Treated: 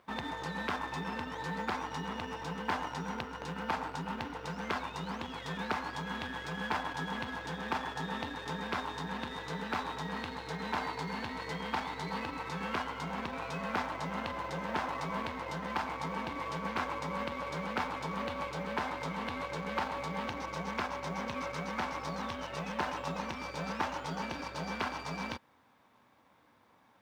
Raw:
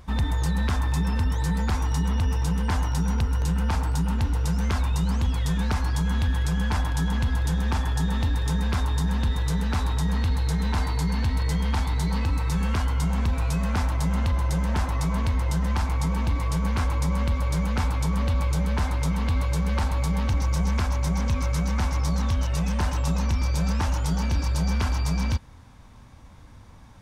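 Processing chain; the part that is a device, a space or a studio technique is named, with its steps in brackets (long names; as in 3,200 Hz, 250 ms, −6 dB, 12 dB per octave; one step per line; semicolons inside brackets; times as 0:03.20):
phone line with mismatched companding (band-pass filter 330–3,300 Hz; mu-law and A-law mismatch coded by A)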